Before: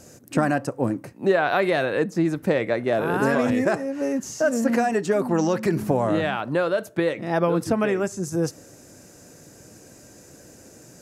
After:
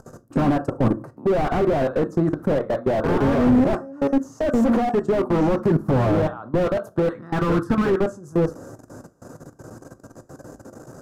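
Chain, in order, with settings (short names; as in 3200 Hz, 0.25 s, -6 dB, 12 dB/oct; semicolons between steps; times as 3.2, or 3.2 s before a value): 7.05–8 fifteen-band EQ 630 Hz -11 dB, 1600 Hz +10 dB, 4000 Hz +4 dB; level quantiser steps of 24 dB; resonant high shelf 1700 Hz -11 dB, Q 3; reverb RT60 0.30 s, pre-delay 8 ms, DRR 12 dB; slew limiter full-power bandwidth 24 Hz; gain +8.5 dB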